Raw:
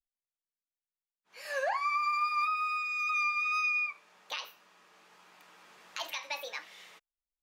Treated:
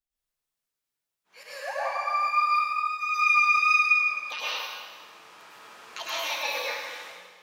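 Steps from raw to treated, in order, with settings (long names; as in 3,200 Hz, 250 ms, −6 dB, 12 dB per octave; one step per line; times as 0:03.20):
0:01.43–0:03.01: noise gate −29 dBFS, range −10 dB
convolution reverb RT60 1.7 s, pre-delay 93 ms, DRR −9 dB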